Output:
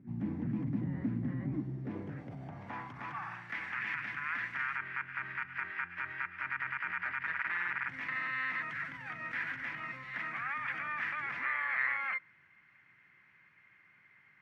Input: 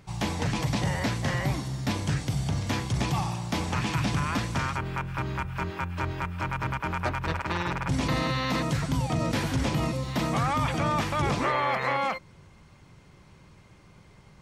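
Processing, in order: harmoniser +12 st -13 dB; dynamic EQ 1300 Hz, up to +4 dB, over -41 dBFS, Q 1.2; in parallel at +1.5 dB: negative-ratio compressor -30 dBFS, ratio -1; on the sum: ten-band EQ 125 Hz +7 dB, 250 Hz +4 dB, 500 Hz -6 dB, 1000 Hz -4 dB, 2000 Hz +8 dB, 4000 Hz -7 dB, 8000 Hz -10 dB; band-pass sweep 260 Hz -> 1800 Hz, 1.42–3.55; gain -9 dB

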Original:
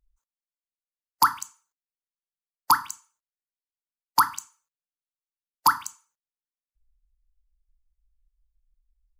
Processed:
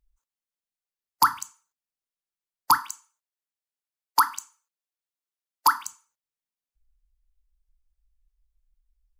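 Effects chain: 2.78–5.87 Bessel high-pass 320 Hz, order 4

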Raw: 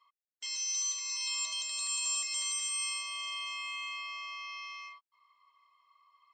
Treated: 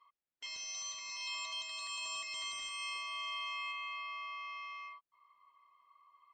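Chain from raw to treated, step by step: tape spacing loss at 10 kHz 26 dB, from 3.71 s at 10 kHz 35 dB; gain +5 dB

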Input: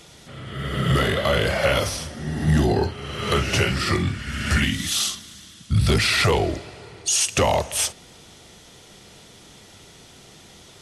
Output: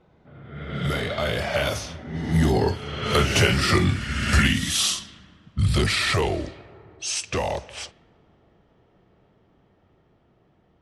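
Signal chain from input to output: Doppler pass-by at 3.88, 21 m/s, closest 27 m; low-pass opened by the level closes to 1100 Hz, open at -23 dBFS; gain +2.5 dB

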